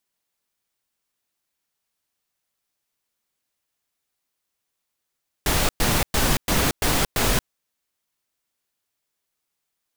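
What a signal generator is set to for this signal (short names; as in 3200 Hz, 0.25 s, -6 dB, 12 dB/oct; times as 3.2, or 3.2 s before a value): noise bursts pink, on 0.23 s, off 0.11 s, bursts 6, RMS -20 dBFS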